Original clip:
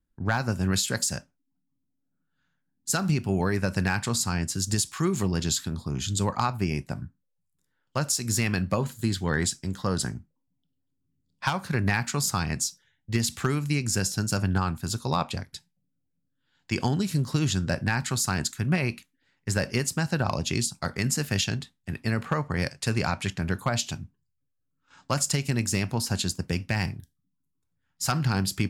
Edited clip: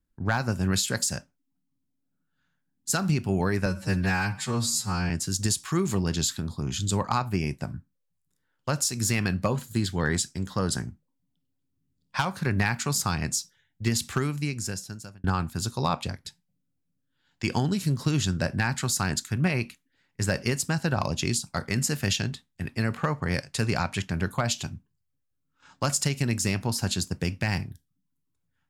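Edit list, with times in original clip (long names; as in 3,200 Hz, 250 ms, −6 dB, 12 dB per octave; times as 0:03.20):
0:03.66–0:04.38: time-stretch 2×
0:13.38–0:14.52: fade out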